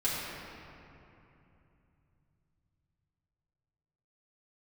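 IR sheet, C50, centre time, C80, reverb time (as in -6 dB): -2.0 dB, 0.159 s, -1.0 dB, 2.9 s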